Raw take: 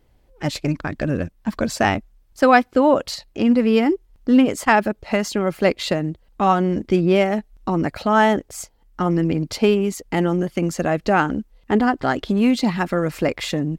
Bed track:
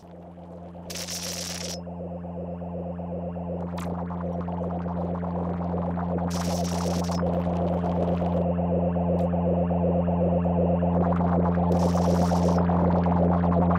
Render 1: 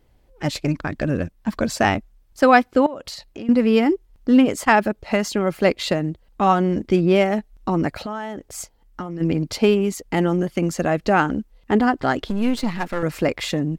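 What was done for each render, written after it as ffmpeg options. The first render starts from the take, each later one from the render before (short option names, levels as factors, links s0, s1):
-filter_complex "[0:a]asettb=1/sr,asplit=3[s0][s1][s2];[s0]atrim=end=2.864[s3];[s1]atrim=start=2.86:end=3.49,asetpts=PTS-STARTPTS,afade=t=in:d=0.004:c=qsin,afade=t=out:st=0.626:d=0.004:c=qsin,acompressor=threshold=0.0316:ratio=5:attack=3.2:release=140:knee=1:detection=peak[s4];[s2]atrim=start=3.486[s5];[s3][s4]acrossfade=d=0.004:c1=hsin:c2=qsin[s6];[s6][s5]acrossfade=d=0.004:c1=qsin:c2=hsin,asplit=3[s7][s8][s9];[s7]afade=t=out:st=7.93:d=0.02[s10];[s8]acompressor=threshold=0.0562:ratio=16:attack=3.2:release=140:knee=1:detection=peak,afade=t=in:st=7.93:d=0.02,afade=t=out:st=9.2:d=0.02[s11];[s9]afade=t=in:st=9.2:d=0.02[s12];[s10][s11][s12]amix=inputs=3:normalize=0,asettb=1/sr,asplit=3[s13][s14][s15];[s13]atrim=end=12.284[s16];[s14]atrim=start=12.28:end=13.03,asetpts=PTS-STARTPTS,afade=t=in:d=0.004:c=qsin,afade=t=out:st=0.746:d=0.004:c=qsin,aeval=exprs='if(lt(val(0),0),0.251*val(0),val(0))':c=same[s17];[s15]atrim=start=13.026[s18];[s16][s17]acrossfade=d=0.004:c1=hsin:c2=qsin[s19];[s19][s18]acrossfade=d=0.004:c1=qsin:c2=hsin"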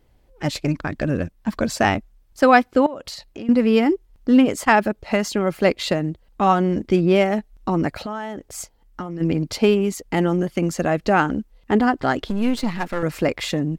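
-af anull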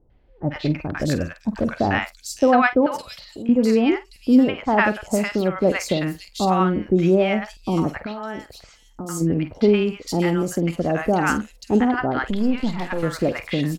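-filter_complex "[0:a]asplit=2[s0][s1];[s1]adelay=48,volume=0.211[s2];[s0][s2]amix=inputs=2:normalize=0,acrossover=split=910|3900[s3][s4][s5];[s4]adelay=100[s6];[s5]adelay=560[s7];[s3][s6][s7]amix=inputs=3:normalize=0"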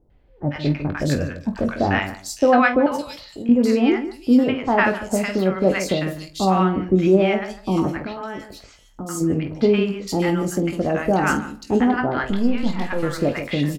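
-filter_complex "[0:a]asplit=2[s0][s1];[s1]adelay=21,volume=0.398[s2];[s0][s2]amix=inputs=2:normalize=0,asplit=2[s3][s4];[s4]adelay=151,lowpass=f=840:p=1,volume=0.316,asplit=2[s5][s6];[s6]adelay=151,lowpass=f=840:p=1,volume=0.16[s7];[s5][s7]amix=inputs=2:normalize=0[s8];[s3][s8]amix=inputs=2:normalize=0"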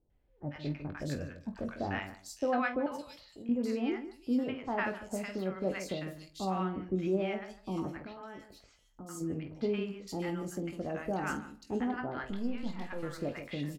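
-af "volume=0.168"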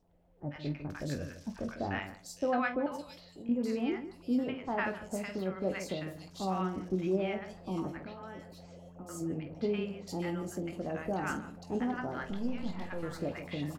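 -filter_complex "[1:a]volume=0.0422[s0];[0:a][s0]amix=inputs=2:normalize=0"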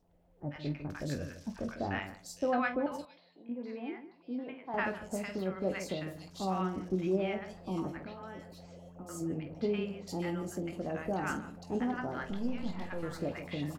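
-filter_complex "[0:a]asettb=1/sr,asplit=3[s0][s1][s2];[s0]atrim=end=3.054[s3];[s1]atrim=start=3.05:end=4.74,asetpts=PTS-STARTPTS,afade=t=in:d=0.004:c=qsin,afade=t=out:st=1.686:d=0.004:c=qsin,highpass=370,equalizer=f=400:t=q:w=4:g=-8,equalizer=f=570:t=q:w=4:g=-6,equalizer=f=830:t=q:w=4:g=-3,equalizer=f=1300:t=q:w=4:g=-10,equalizer=f=1900:t=q:w=4:g=-4,equalizer=f=2900:t=q:w=4:g=-9,lowpass=f=3300:w=0.5412,lowpass=f=3300:w=1.3066[s4];[s2]atrim=start=4.736[s5];[s3][s4]acrossfade=d=0.004:c1=hsin:c2=qsin[s6];[s6][s5]acrossfade=d=0.004:c1=qsin:c2=hsin"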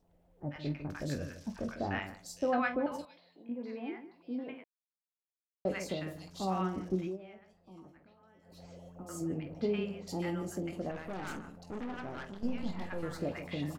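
-filter_complex "[0:a]asettb=1/sr,asplit=3[s0][s1][s2];[s0]atrim=end=10.914[s3];[s1]atrim=start=10.91:end=12.43,asetpts=PTS-STARTPTS,afade=t=in:d=0.004:c=qsin,afade=t=out:st=1.516:d=0.004:c=qsin,aeval=exprs='(tanh(70.8*val(0)+0.65)-tanh(0.65))/70.8':c=same[s4];[s2]atrim=start=12.426[s5];[s3][s4]acrossfade=d=0.004:c1=hsin:c2=qsin[s6];[s6][s5]acrossfade=d=0.004:c1=qsin:c2=hsin,asplit=5[s7][s8][s9][s10][s11];[s7]atrim=end=4.64,asetpts=PTS-STARTPTS,afade=t=out:st=4.636:d=0.004:c=hsin[s12];[s8]atrim=start=4.64:end=5.65,asetpts=PTS-STARTPTS,volume=0[s13];[s9]atrim=start=5.65:end=7.18,asetpts=PTS-STARTPTS,afade=t=in:d=0.004:c=hsin,afade=t=out:st=1.31:d=0.22:silence=0.133352[s14];[s10]atrim=start=7.18:end=8.42,asetpts=PTS-STARTPTS,volume=0.133[s15];[s11]atrim=start=8.42,asetpts=PTS-STARTPTS,afade=t=in:d=0.22:silence=0.133352[s16];[s12][s13][s14][s15][s16]concat=n=5:v=0:a=1"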